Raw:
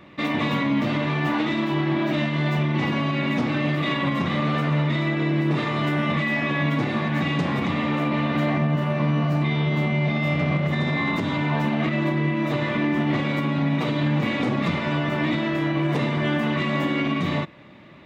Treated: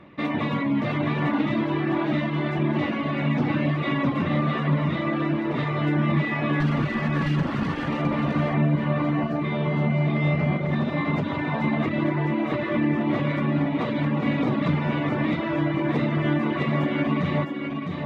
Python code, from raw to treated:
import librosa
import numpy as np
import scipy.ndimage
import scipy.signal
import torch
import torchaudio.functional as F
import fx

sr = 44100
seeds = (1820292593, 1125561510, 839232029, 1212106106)

p1 = fx.lower_of_two(x, sr, delay_ms=0.65, at=(6.6, 7.88))
p2 = fx.lowpass(p1, sr, hz=1800.0, slope=6)
p3 = p2 + fx.echo_single(p2, sr, ms=658, db=-4.0, dry=0)
y = fx.dereverb_blind(p3, sr, rt60_s=0.54)